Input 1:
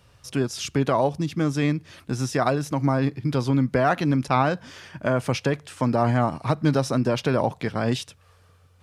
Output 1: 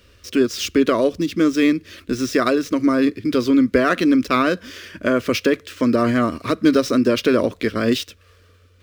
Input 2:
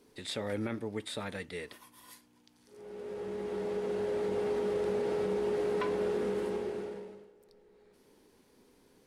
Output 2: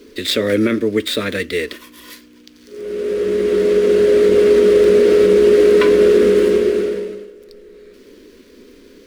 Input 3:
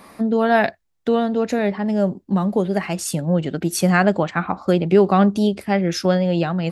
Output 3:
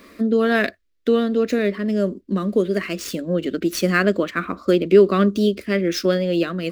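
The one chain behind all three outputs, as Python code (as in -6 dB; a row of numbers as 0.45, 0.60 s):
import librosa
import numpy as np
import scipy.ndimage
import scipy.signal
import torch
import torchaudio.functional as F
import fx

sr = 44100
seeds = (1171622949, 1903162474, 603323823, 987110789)

y = scipy.signal.medfilt(x, 5)
y = fx.fixed_phaser(y, sr, hz=340.0, stages=4)
y = fx.dynamic_eq(y, sr, hz=1200.0, q=5.4, threshold_db=-50.0, ratio=4.0, max_db=4)
y = librosa.util.normalize(y) * 10.0 ** (-3 / 20.0)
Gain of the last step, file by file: +9.0, +22.0, +3.5 dB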